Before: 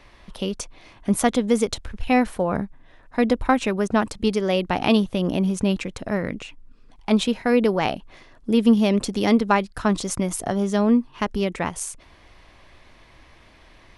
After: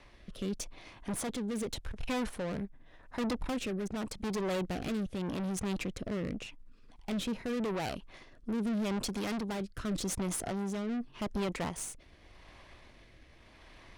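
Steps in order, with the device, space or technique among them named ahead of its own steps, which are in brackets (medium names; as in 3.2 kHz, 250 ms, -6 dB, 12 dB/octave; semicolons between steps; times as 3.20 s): overdriven rotary cabinet (valve stage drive 30 dB, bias 0.6; rotary cabinet horn 0.85 Hz)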